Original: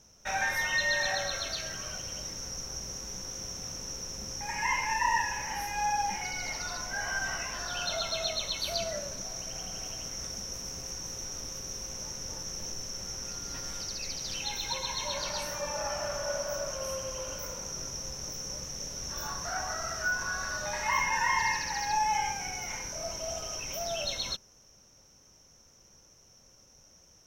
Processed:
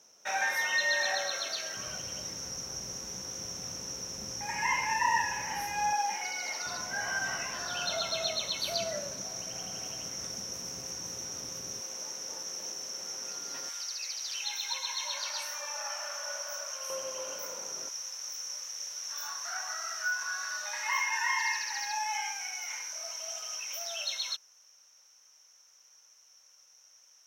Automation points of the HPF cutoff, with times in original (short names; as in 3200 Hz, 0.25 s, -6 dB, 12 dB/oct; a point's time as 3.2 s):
360 Hz
from 1.77 s 96 Hz
from 5.93 s 400 Hz
from 6.66 s 120 Hz
from 11.8 s 350 Hz
from 13.69 s 1100 Hz
from 16.9 s 370 Hz
from 17.89 s 1200 Hz